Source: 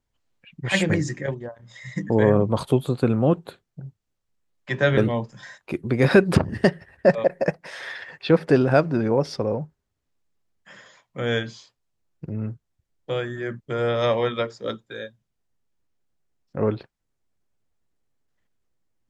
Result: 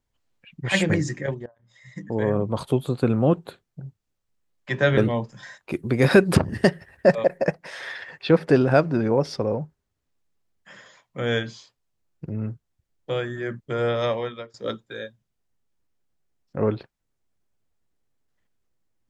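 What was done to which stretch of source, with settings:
0:01.46–0:03.19: fade in, from −18.5 dB
0:05.72–0:07.38: high-shelf EQ 8,100 Hz +10 dB
0:13.86–0:14.54: fade out, to −20.5 dB

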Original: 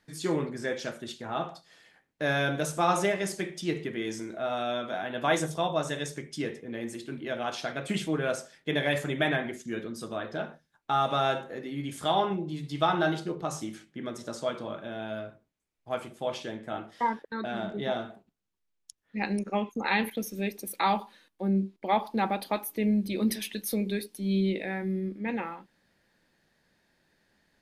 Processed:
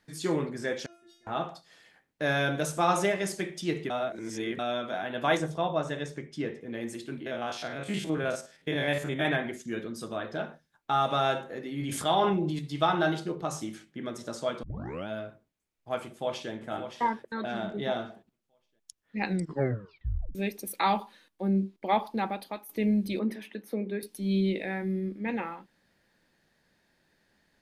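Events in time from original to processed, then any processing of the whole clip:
0:00.86–0:01.27: stiff-string resonator 340 Hz, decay 0.6 s, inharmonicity 0.002
0:03.90–0:04.59: reverse
0:05.37–0:06.61: low-pass filter 2,300 Hz 6 dB per octave
0:07.21–0:09.25: spectrum averaged block by block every 50 ms
0:11.72–0:12.59: level that may fall only so fast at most 24 dB per second
0:14.63: tape start 0.45 s
0:16.04–0:16.51: delay throw 570 ms, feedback 30%, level −8.5 dB
0:19.26: tape stop 1.09 s
0:21.95–0:22.69: fade out, to −12.5 dB
0:23.19–0:24.03: three-way crossover with the lows and the highs turned down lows −15 dB, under 200 Hz, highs −20 dB, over 2,100 Hz

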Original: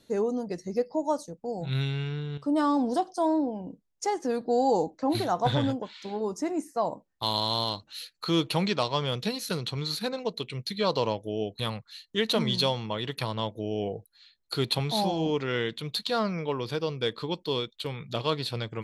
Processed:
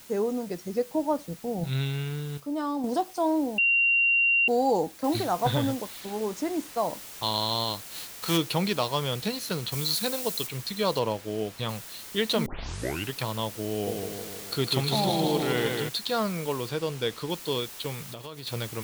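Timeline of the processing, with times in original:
0:00.88–0:01.64: bass and treble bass +9 dB, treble −13 dB
0:02.40–0:02.84: clip gain −5.5 dB
0:03.58–0:04.48: beep over 2,760 Hz −19 dBFS
0:05.04: noise floor change −50 dB −43 dB
0:06.00–0:06.78: slack as between gear wheels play −43.5 dBFS
0:07.90–0:08.36: spectral envelope flattened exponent 0.6
0:09.72–0:10.47: high-shelf EQ 4,700 Hz +10 dB
0:10.99–0:11.69: high-shelf EQ 5,300 Hz −8.5 dB
0:12.46: tape start 0.68 s
0:13.71–0:15.89: feedback echo with a swinging delay time 156 ms, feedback 61%, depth 73 cents, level −4 dB
0:16.69–0:17.30: high-shelf EQ 9,900 Hz −9 dB
0:18.02–0:18.47: downward compressor, threshold −36 dBFS

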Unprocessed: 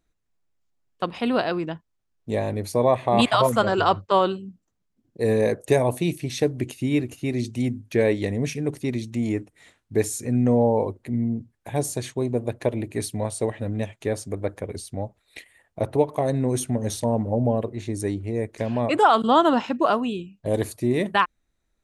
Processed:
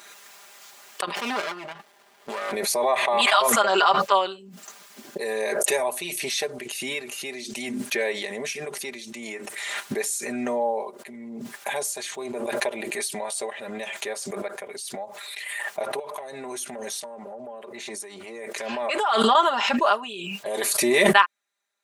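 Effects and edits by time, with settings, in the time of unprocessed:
0:01.15–0:02.52: windowed peak hold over 33 samples
0:15.99–0:19.35: downward compressor, threshold −28 dBFS
whole clip: high-pass filter 810 Hz 12 dB per octave; comb filter 5 ms, depth 80%; background raised ahead of every attack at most 22 dB per second

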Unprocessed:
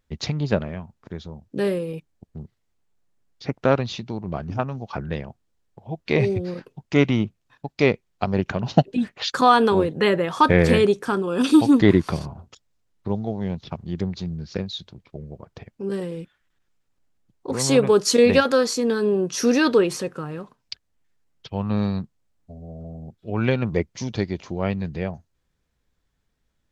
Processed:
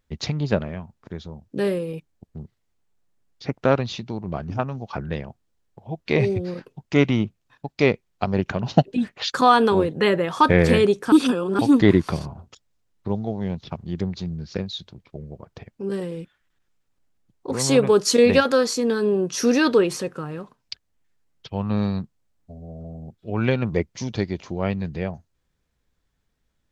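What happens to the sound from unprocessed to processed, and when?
0:11.12–0:11.59: reverse

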